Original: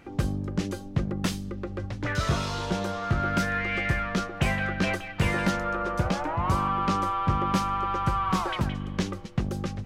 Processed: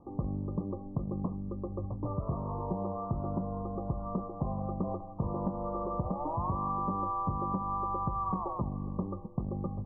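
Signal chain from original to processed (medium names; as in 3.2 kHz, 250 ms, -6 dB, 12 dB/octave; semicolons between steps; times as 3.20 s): Chebyshev low-pass 1.2 kHz, order 10; compression, threshold -26 dBFS, peak gain reduction 7 dB; trim -2.5 dB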